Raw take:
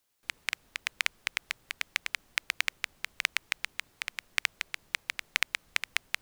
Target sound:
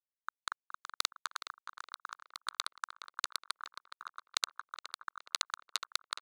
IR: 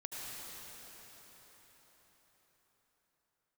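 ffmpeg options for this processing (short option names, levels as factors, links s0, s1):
-filter_complex "[0:a]afftfilt=real='re*gte(hypot(re,im),0.0501)':imag='im*gte(hypot(re,im),0.0501)':win_size=1024:overlap=0.75,equalizer=f=11000:w=1:g=-6,bandreject=f=7900:w=11,aeval=exprs='0.188*(abs(mod(val(0)/0.188+3,4)-2)-1)':c=same,acrossover=split=270|3000[s0][s1][s2];[s0]acompressor=threshold=0.0178:ratio=5[s3];[s3][s1][s2]amix=inputs=3:normalize=0,aderivative,aeval=exprs='sgn(val(0))*max(abs(val(0))-0.00501,0)':c=same,asetrate=24750,aresample=44100,atempo=1.7818,asplit=2[s4][s5];[s5]adelay=418,lowpass=f=2400:p=1,volume=0.355,asplit=2[s6][s7];[s7]adelay=418,lowpass=f=2400:p=1,volume=0.49,asplit=2[s8][s9];[s9]adelay=418,lowpass=f=2400:p=1,volume=0.49,asplit=2[s10][s11];[s11]adelay=418,lowpass=f=2400:p=1,volume=0.49,asplit=2[s12][s13];[s13]adelay=418,lowpass=f=2400:p=1,volume=0.49,asplit=2[s14][s15];[s15]adelay=418,lowpass=f=2400:p=1,volume=0.49[s16];[s4][s6][s8][s10][s12][s14][s16]amix=inputs=7:normalize=0,volume=1.88"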